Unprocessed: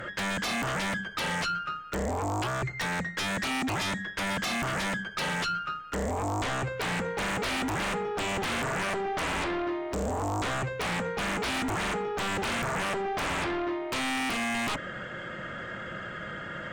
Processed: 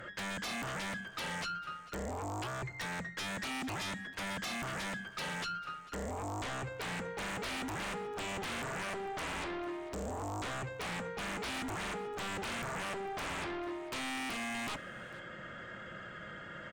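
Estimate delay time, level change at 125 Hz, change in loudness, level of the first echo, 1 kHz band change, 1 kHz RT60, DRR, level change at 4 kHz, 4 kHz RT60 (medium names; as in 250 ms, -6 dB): 447 ms, -9.0 dB, -8.5 dB, -19.5 dB, -8.5 dB, no reverb, no reverb, -8.0 dB, no reverb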